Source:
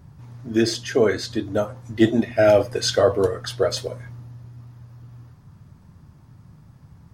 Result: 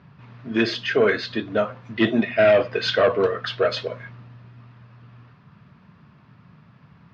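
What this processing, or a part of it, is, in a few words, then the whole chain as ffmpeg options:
overdrive pedal into a guitar cabinet: -filter_complex "[0:a]asettb=1/sr,asplit=3[link_01][link_02][link_03];[link_01]atrim=end=2.344[link_04];[link_02]atrim=start=2.34:end=2.85,asetpts=PTS-STARTPTS,afade=type=in:duration=0.004:curve=qsin,afade=type=out:start_time=0.506:duration=0.004:curve=qsin,lowpass=6100[link_05];[link_03]atrim=start=2.846[link_06];[link_04][link_05]acrossfade=duration=0.004:curve1=hsin:curve2=qsin[link_07];[link_07][link_06]acrossfade=duration=0.004:curve1=qsin:curve2=hsin,asplit=2[link_08][link_09];[link_09]highpass=frequency=720:poles=1,volume=14dB,asoftclip=type=tanh:threshold=-4.5dB[link_10];[link_08][link_10]amix=inputs=2:normalize=0,lowpass=frequency=2300:poles=1,volume=-6dB,highpass=81,equalizer=frequency=89:width_type=q:width=4:gain=-6,equalizer=frequency=200:width_type=q:width=4:gain=4,equalizer=frequency=320:width_type=q:width=4:gain=-6,equalizer=frequency=530:width_type=q:width=4:gain=-4,equalizer=frequency=830:width_type=q:width=4:gain=-8,equalizer=frequency=2600:width_type=q:width=4:gain=5,lowpass=frequency=4300:width=0.5412,lowpass=frequency=4300:width=1.3066"

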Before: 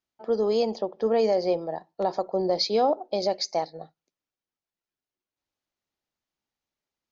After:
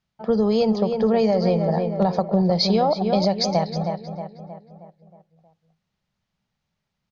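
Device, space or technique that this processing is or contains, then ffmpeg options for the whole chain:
jukebox: -filter_complex "[0:a]lowpass=5400,lowshelf=frequency=230:width_type=q:width=3:gain=8,asplit=2[link_01][link_02];[link_02]adelay=315,lowpass=frequency=2600:poles=1,volume=-8.5dB,asplit=2[link_03][link_04];[link_04]adelay=315,lowpass=frequency=2600:poles=1,volume=0.5,asplit=2[link_05][link_06];[link_06]adelay=315,lowpass=frequency=2600:poles=1,volume=0.5,asplit=2[link_07][link_08];[link_08]adelay=315,lowpass=frequency=2600:poles=1,volume=0.5,asplit=2[link_09][link_10];[link_10]adelay=315,lowpass=frequency=2600:poles=1,volume=0.5,asplit=2[link_11][link_12];[link_12]adelay=315,lowpass=frequency=2600:poles=1,volume=0.5[link_13];[link_01][link_03][link_05][link_07][link_09][link_11][link_13]amix=inputs=7:normalize=0,acompressor=threshold=-24dB:ratio=5,volume=8.5dB"

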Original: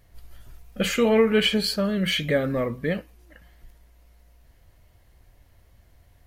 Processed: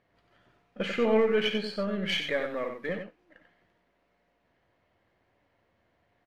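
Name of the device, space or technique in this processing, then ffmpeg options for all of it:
crystal radio: -filter_complex "[0:a]asettb=1/sr,asplit=3[link_01][link_02][link_03];[link_01]atrim=end=2.094[link_04];[link_02]atrim=start=2.09:end=2.89,asetpts=PTS-STARTPTS,afade=type=in:duration=0.004:curve=qsin,afade=type=out:start_time=0.796:duration=0.004:curve=qsin,aemphasis=mode=production:type=riaa[link_05];[link_03]atrim=start=2.886[link_06];[link_04][link_05]acrossfade=duration=0.004:curve1=hsin:curve2=qsin[link_07];[link_07][link_06]acrossfade=duration=0.004:curve1=qsin:curve2=hsin,highpass=220,lowpass=2600,aeval=exprs='if(lt(val(0),0),0.708*val(0),val(0))':channel_layout=same,aecho=1:1:92:0.447,volume=-3.5dB"

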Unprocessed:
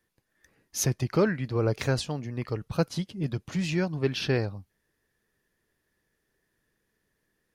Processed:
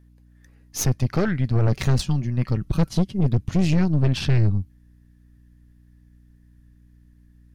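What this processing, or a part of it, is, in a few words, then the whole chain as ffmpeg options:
valve amplifier with mains hum: -filter_complex "[0:a]asettb=1/sr,asplit=3[link_01][link_02][link_03];[link_01]atrim=end=1.674[link_04];[link_02]atrim=start=1.67:end=3.21,asetpts=PTS-STARTPTS,afade=type=in:duration=0.004:curve=qsin,afade=type=out:start_time=1.536:duration=0.004:curve=qsin,aecho=1:1:5.3:0.57,atrim=end_sample=67914[link_05];[link_03]atrim=start=3.206[link_06];[link_04][link_05]acrossfade=duration=0.004:curve1=hsin:curve2=qsin[link_07];[link_07][link_06]acrossfade=duration=0.004:curve1=qsin:curve2=hsin,asubboost=boost=10.5:cutoff=140,aeval=exprs='(tanh(12.6*val(0)+0.75)-tanh(0.75))/12.6':channel_layout=same,aeval=exprs='val(0)+0.00126*(sin(2*PI*60*n/s)+sin(2*PI*2*60*n/s)/2+sin(2*PI*3*60*n/s)/3+sin(2*PI*4*60*n/s)/4+sin(2*PI*5*60*n/s)/5)':channel_layout=same,volume=6.5dB"

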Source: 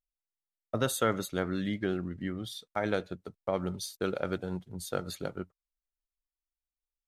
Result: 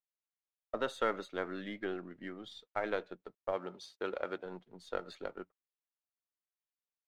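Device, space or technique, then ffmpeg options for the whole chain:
crystal radio: -filter_complex "[0:a]highpass=340,lowpass=3100,aeval=exprs='if(lt(val(0),0),0.708*val(0),val(0))':channel_layout=same,asettb=1/sr,asplit=3[link_01][link_02][link_03];[link_01]atrim=end=3.524[link_04];[link_02]atrim=start=3.52:end=4.46,asetpts=PTS-STARTPTS,afade=type=in:duration=0.004:curve=qsin,afade=type=out:start_time=0.936:duration=0.004:curve=qsin,highpass=frequency=150:poles=1[link_05];[link_03]atrim=start=4.456[link_06];[link_04][link_05]acrossfade=duration=0.004:curve1=hsin:curve2=qsin[link_07];[link_07][link_06]acrossfade=duration=0.004:curve1=qsin:curve2=hsin,volume=-2dB"

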